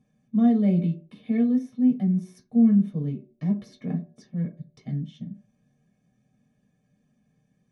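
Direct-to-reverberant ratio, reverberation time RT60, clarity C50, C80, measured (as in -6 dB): -3.5 dB, 0.55 s, 13.0 dB, 16.0 dB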